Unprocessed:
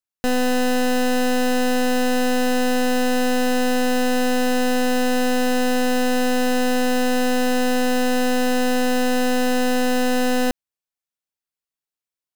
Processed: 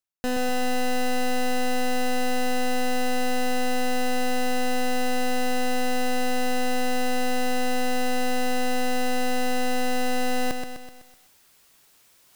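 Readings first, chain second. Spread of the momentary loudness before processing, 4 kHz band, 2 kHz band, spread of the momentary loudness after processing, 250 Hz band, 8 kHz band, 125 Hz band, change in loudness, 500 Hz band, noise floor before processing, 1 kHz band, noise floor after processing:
0 LU, -5.0 dB, -5.0 dB, 0 LU, -8.5 dB, -5.0 dB, n/a, -6.5 dB, -7.0 dB, under -85 dBFS, -3.5 dB, -58 dBFS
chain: reverse; upward compressor, threshold -22 dBFS; reverse; lo-fi delay 0.126 s, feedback 55%, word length 8-bit, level -6 dB; gain -6 dB

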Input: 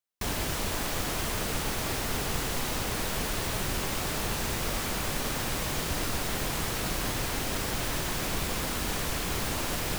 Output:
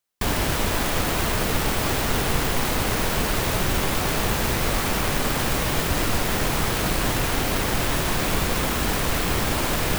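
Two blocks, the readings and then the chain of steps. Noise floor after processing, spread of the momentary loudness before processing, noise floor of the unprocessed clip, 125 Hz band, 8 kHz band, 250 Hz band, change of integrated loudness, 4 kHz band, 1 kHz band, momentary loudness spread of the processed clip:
-25 dBFS, 0 LU, -32 dBFS, +8.5 dB, +5.0 dB, +8.5 dB, +7.5 dB, +6.0 dB, +8.5 dB, 0 LU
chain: tracing distortion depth 0.21 ms; gain +8.5 dB

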